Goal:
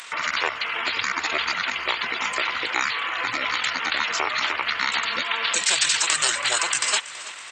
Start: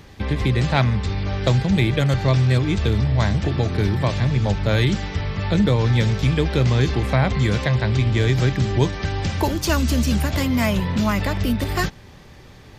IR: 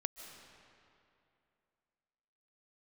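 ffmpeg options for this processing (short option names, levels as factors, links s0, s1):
-filter_complex "[0:a]aemphasis=mode=production:type=50kf,asetrate=25476,aresample=44100,atempo=1.73107,highpass=1300,highshelf=f=11000:g=-3,asplit=2[s0][s1];[s1]acompressor=threshold=0.0158:ratio=6,volume=1.26[s2];[s0][s2]amix=inputs=2:normalize=0,atempo=1.7,afftfilt=real='re*lt(hypot(re,im),0.178)':imag='im*lt(hypot(re,im),0.178)':win_size=1024:overlap=0.75,asplit=2[s3][s4];[s4]aecho=0:1:328|656|984|1312|1640:0.141|0.0777|0.0427|0.0235|0.0129[s5];[s3][s5]amix=inputs=2:normalize=0,volume=2"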